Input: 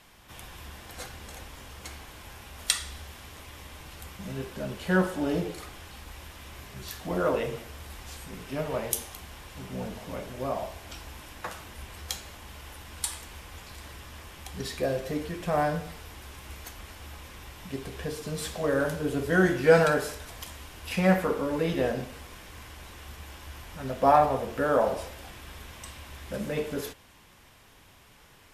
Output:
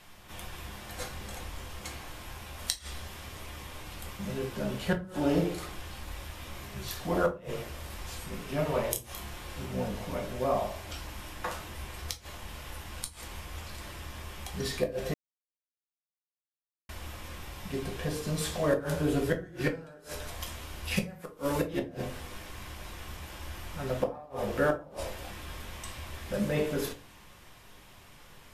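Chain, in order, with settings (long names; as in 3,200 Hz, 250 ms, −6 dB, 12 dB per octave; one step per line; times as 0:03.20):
0:20.96–0:21.63: high-shelf EQ 4,400 Hz +10.5 dB
gate with flip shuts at −16 dBFS, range −30 dB
0:08.91–0:09.66: double-tracking delay 29 ms −5.5 dB
rectangular room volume 130 cubic metres, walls furnished, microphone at 0.94 metres
0:15.14–0:16.89: silence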